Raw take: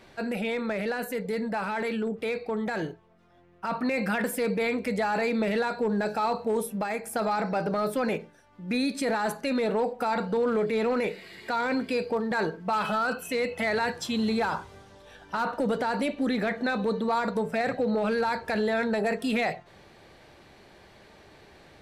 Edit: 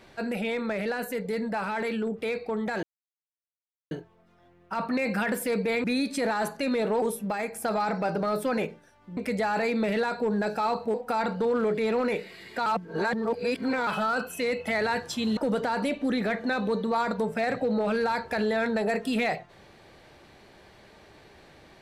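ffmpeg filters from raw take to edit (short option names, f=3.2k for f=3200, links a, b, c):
-filter_complex "[0:a]asplit=9[a][b][c][d][e][f][g][h][i];[a]atrim=end=2.83,asetpts=PTS-STARTPTS,afade=t=out:st=2.826:d=0.004:c=hsin,apad=pad_dur=1.08[j];[b]atrim=start=2.83:end=4.762,asetpts=PTS-STARTPTS,afade=t=in:d=0.004:c=hsin[k];[c]atrim=start=8.678:end=9.862[l];[d]atrim=start=6.528:end=8.682[m];[e]atrim=start=4.758:end=6.532[n];[f]atrim=start=9.858:end=11.582[o];[g]atrim=start=11.578:end=12.792,asetpts=PTS-STARTPTS,areverse[p];[h]atrim=start=12.788:end=14.292[q];[i]atrim=start=15.538[r];[j][k]concat=n=2:v=0:a=1[s];[s][l]acrossfade=d=0.004:c1=hsin:c2=hsin[t];[t][m]acrossfade=d=0.004:c1=hsin:c2=hsin[u];[u][n]acrossfade=d=0.004:c1=hsin:c2=hsin[v];[v][o]acrossfade=d=0.004:c1=hsin:c2=hsin[w];[w][p]acrossfade=d=0.004:c1=hsin:c2=hsin[x];[x][q]acrossfade=d=0.004:c1=hsin:c2=hsin[y];[y][r]acrossfade=d=0.004:c1=hsin:c2=hsin"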